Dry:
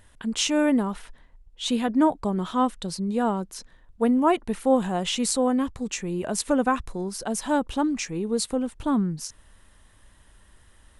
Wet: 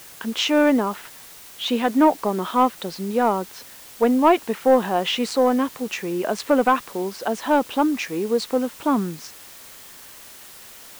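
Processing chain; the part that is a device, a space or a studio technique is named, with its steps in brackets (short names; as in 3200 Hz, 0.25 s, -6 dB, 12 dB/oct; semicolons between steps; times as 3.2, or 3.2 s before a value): tape answering machine (BPF 320–3200 Hz; soft clip -13 dBFS, distortion -20 dB; wow and flutter 20 cents; white noise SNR 21 dB); gain +7.5 dB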